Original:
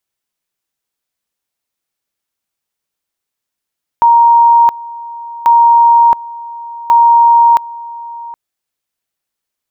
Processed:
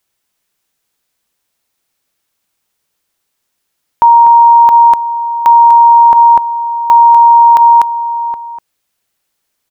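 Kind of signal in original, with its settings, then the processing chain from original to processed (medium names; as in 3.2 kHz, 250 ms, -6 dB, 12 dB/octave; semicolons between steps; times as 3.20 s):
two-level tone 936 Hz -3.5 dBFS, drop 20 dB, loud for 0.67 s, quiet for 0.77 s, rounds 3
on a send: delay 246 ms -8 dB; on the sum: loudness maximiser +10 dB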